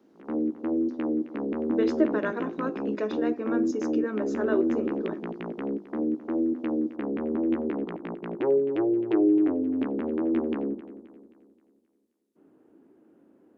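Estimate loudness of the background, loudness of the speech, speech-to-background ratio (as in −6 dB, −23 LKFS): −28.0 LKFS, −31.0 LKFS, −3.0 dB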